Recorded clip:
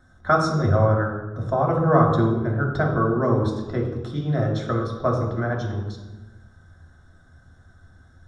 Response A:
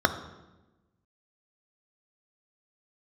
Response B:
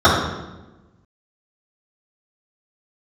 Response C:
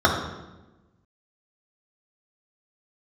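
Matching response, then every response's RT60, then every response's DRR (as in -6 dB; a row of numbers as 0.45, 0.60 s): C; 1.1, 1.1, 1.1 s; 7.5, -11.5, -2.5 dB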